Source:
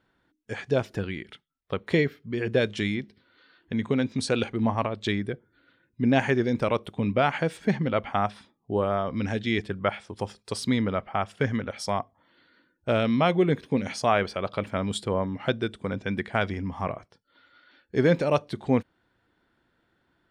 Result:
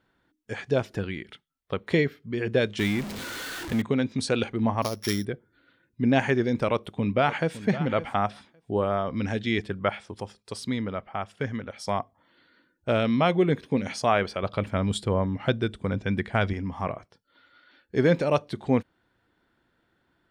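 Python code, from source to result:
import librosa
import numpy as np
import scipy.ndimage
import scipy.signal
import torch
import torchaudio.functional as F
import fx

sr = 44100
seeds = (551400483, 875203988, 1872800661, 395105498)

y = fx.zero_step(x, sr, step_db=-30.0, at=(2.79, 3.82))
y = fx.sample_sort(y, sr, block=8, at=(4.82, 5.25))
y = fx.echo_throw(y, sr, start_s=6.71, length_s=0.87, ms=560, feedback_pct=10, wet_db=-14.0)
y = fx.low_shelf(y, sr, hz=100.0, db=12.0, at=(14.43, 16.53))
y = fx.edit(y, sr, fx.clip_gain(start_s=10.2, length_s=1.67, db=-4.5), tone=tone)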